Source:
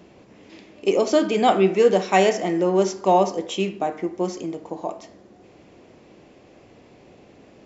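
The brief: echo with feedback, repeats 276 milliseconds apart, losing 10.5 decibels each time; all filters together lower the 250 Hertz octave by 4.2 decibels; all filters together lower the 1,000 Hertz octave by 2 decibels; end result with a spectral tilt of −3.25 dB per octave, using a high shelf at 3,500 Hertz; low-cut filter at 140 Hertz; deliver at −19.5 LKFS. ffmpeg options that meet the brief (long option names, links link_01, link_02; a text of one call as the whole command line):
ffmpeg -i in.wav -af "highpass=140,equalizer=frequency=250:width_type=o:gain=-6,equalizer=frequency=1000:width_type=o:gain=-3,highshelf=frequency=3500:gain=7.5,aecho=1:1:276|552|828:0.299|0.0896|0.0269,volume=3dB" out.wav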